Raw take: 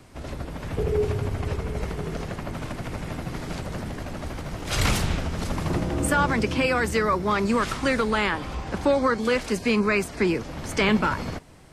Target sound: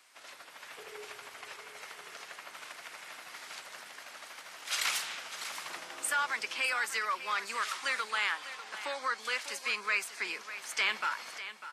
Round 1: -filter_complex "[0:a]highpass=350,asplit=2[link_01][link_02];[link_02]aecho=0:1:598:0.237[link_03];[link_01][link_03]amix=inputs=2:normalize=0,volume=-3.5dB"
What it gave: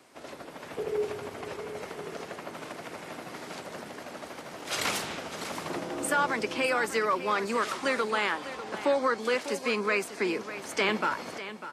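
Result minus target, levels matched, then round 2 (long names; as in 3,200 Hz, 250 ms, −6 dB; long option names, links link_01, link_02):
250 Hz band +19.5 dB
-filter_complex "[0:a]highpass=1400,asplit=2[link_01][link_02];[link_02]aecho=0:1:598:0.237[link_03];[link_01][link_03]amix=inputs=2:normalize=0,volume=-3.5dB"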